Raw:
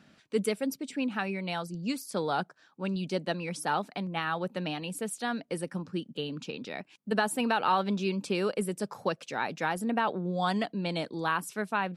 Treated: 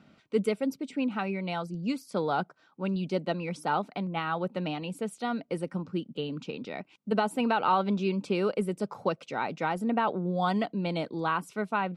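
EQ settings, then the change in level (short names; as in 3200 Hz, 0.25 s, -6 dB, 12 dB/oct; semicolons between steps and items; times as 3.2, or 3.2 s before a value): Butterworth band-stop 1700 Hz, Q 7.3; LPF 2300 Hz 6 dB/oct; +2.0 dB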